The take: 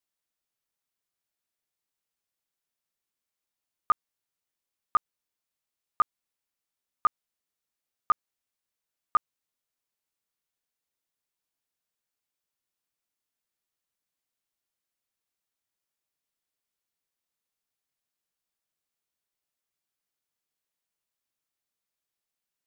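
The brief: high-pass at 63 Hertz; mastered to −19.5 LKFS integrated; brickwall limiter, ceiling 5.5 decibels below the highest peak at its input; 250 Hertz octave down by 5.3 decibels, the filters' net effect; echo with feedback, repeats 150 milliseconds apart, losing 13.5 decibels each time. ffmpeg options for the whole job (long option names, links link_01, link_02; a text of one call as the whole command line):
ffmpeg -i in.wav -af "highpass=63,equalizer=frequency=250:width_type=o:gain=-7.5,alimiter=limit=-20dB:level=0:latency=1,aecho=1:1:150|300:0.211|0.0444,volume=17.5dB" out.wav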